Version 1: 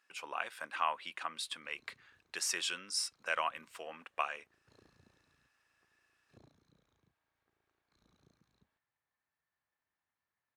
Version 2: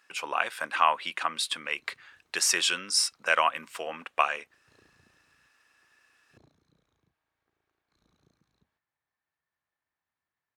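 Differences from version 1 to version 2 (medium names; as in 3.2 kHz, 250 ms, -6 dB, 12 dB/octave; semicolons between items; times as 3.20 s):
speech +10.5 dB; reverb: on, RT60 0.40 s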